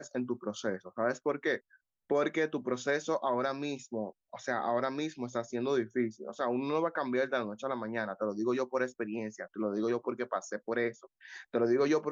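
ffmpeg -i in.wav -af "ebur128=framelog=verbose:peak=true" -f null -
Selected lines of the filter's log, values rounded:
Integrated loudness:
  I:         -33.5 LUFS
  Threshold: -43.7 LUFS
Loudness range:
  LRA:         1.7 LU
  Threshold: -53.8 LUFS
  LRA low:   -34.8 LUFS
  LRA high:  -33.1 LUFS
True peak:
  Peak:      -17.2 dBFS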